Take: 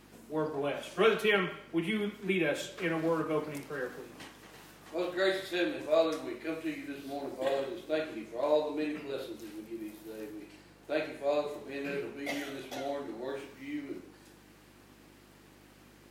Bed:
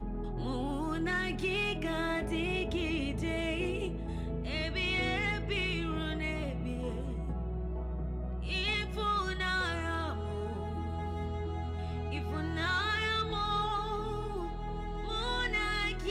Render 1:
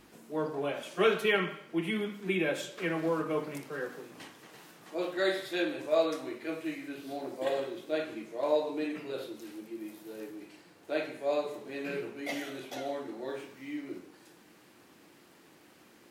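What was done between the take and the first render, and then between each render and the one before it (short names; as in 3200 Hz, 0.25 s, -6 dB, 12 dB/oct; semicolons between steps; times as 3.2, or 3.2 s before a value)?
de-hum 50 Hz, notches 5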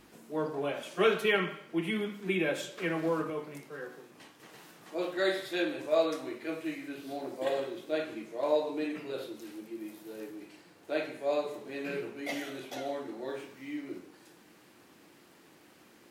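3.3–4.4 resonator 74 Hz, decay 0.41 s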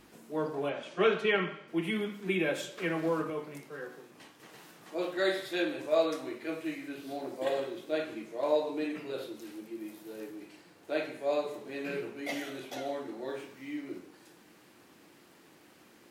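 0.69–1.68 air absorption 94 m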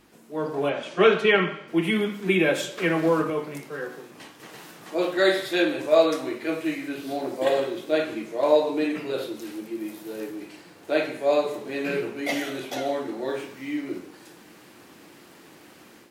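AGC gain up to 9 dB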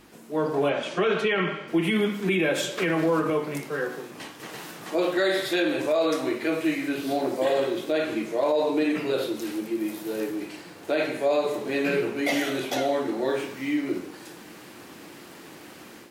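in parallel at -2.5 dB: compressor, threshold -29 dBFS, peak gain reduction 16 dB; on the sum: limiter -15 dBFS, peak gain reduction 11 dB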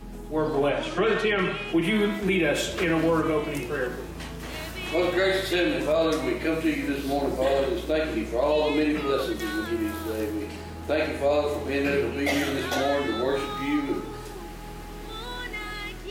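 add bed -2.5 dB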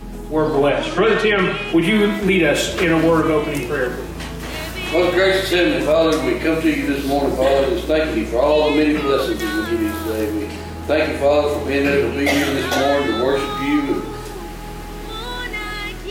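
gain +8 dB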